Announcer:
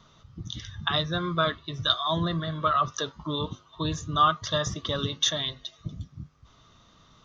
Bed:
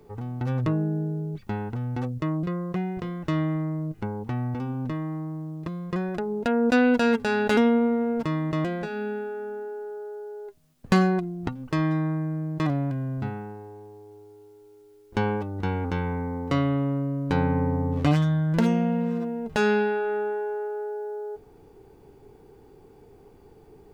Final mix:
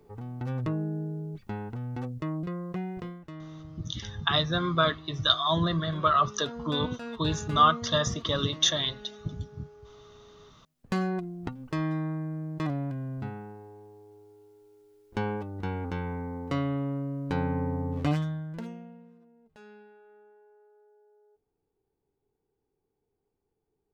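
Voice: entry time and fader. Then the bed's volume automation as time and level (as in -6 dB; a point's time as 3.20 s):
3.40 s, +1.0 dB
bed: 3.06 s -5.5 dB
3.30 s -17.5 dB
10.36 s -17.5 dB
11.24 s -5.5 dB
18.12 s -5.5 dB
19.18 s -29.5 dB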